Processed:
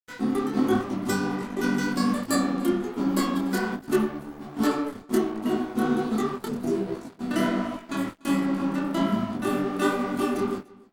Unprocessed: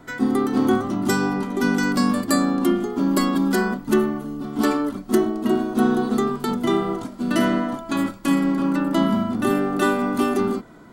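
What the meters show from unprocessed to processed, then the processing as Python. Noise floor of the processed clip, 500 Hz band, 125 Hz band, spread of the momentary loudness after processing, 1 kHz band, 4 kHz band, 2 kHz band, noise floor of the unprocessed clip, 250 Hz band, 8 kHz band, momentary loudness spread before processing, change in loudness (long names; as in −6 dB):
−49 dBFS, −5.0 dB, −4.5 dB, 6 LU, −5.0 dB, −4.5 dB, −5.0 dB, −41 dBFS, −5.0 dB, −4.5 dB, 5 LU, −5.0 dB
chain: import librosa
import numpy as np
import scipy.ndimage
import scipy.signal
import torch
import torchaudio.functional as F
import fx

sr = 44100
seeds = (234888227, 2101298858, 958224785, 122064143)

p1 = fx.spec_repair(x, sr, seeds[0], start_s=6.48, length_s=0.67, low_hz=730.0, high_hz=4800.0, source='after')
p2 = np.sign(p1) * np.maximum(np.abs(p1) - 10.0 ** (-34.0 / 20.0), 0.0)
p3 = p2 + fx.echo_single(p2, sr, ms=292, db=-23.5, dry=0)
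y = fx.detune_double(p3, sr, cents=45)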